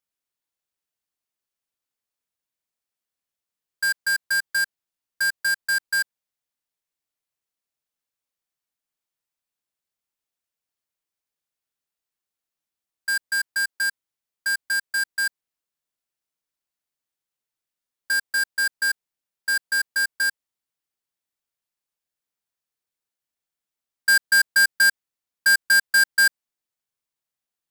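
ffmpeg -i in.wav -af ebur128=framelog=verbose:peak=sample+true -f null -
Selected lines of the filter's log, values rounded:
Integrated loudness:
  I:         -21.4 LUFS
  Threshold: -31.6 LUFS
Loudness range:
  LRA:        12.4 LU
  Threshold: -45.0 LUFS
  LRA low:   -31.9 LUFS
  LRA high:  -19.5 LUFS
Sample peak:
  Peak:      -14.8 dBFS
True peak:
  Peak:      -12.7 dBFS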